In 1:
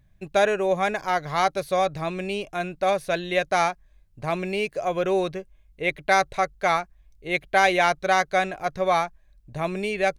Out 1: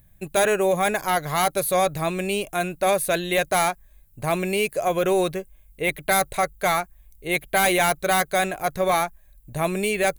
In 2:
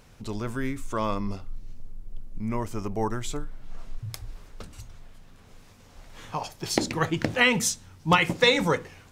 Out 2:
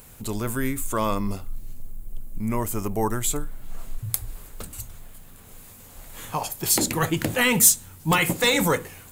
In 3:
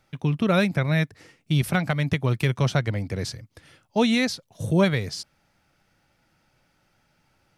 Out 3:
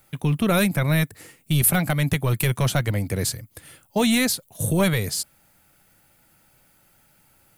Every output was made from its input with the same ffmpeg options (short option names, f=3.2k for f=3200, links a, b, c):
-af "highshelf=f=7.5k:t=q:w=1.5:g=-7,apsyclip=18dB,aexciter=amount=15.6:drive=7.2:freq=8.3k,volume=-14.5dB"